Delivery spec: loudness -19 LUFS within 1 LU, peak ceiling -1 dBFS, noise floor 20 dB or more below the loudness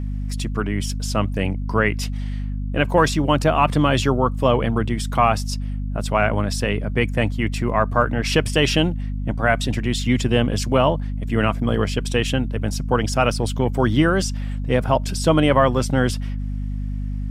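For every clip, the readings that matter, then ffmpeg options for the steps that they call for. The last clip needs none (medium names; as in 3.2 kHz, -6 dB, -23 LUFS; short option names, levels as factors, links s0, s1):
hum 50 Hz; highest harmonic 250 Hz; hum level -23 dBFS; loudness -21.0 LUFS; peak level -3.5 dBFS; loudness target -19.0 LUFS
-> -af "bandreject=f=50:t=h:w=4,bandreject=f=100:t=h:w=4,bandreject=f=150:t=h:w=4,bandreject=f=200:t=h:w=4,bandreject=f=250:t=h:w=4"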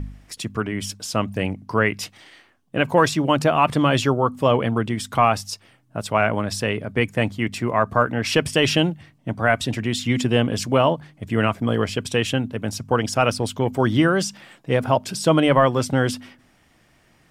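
hum not found; loudness -21.0 LUFS; peak level -4.0 dBFS; loudness target -19.0 LUFS
-> -af "volume=1.26"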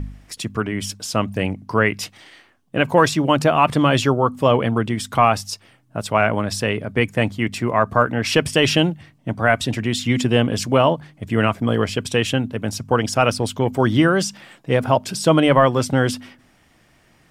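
loudness -19.0 LUFS; peak level -2.0 dBFS; noise floor -56 dBFS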